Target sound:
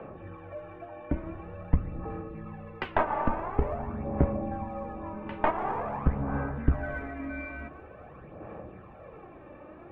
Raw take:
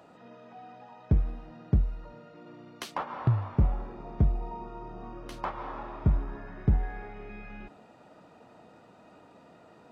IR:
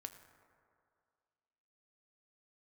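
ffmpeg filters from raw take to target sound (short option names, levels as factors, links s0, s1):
-filter_complex "[0:a]highpass=f=220:t=q:w=0.5412,highpass=f=220:t=q:w=1.307,lowpass=f=2800:t=q:w=0.5176,lowpass=f=2800:t=q:w=0.7071,lowpass=f=2800:t=q:w=1.932,afreqshift=-140,aeval=exprs='0.106*(cos(1*acos(clip(val(0)/0.106,-1,1)))-cos(1*PI/2))+0.0422*(cos(2*acos(clip(val(0)/0.106,-1,1)))-cos(2*PI/2))':c=same,asplit=2[s0][s1];[1:a]atrim=start_sample=2205,asetrate=35721,aresample=44100,highshelf=f=4200:g=-9[s2];[s1][s2]afir=irnorm=-1:irlink=0,volume=2.99[s3];[s0][s3]amix=inputs=2:normalize=0,aphaser=in_gain=1:out_gain=1:delay=3.4:decay=0.5:speed=0.47:type=sinusoidal,volume=0.794"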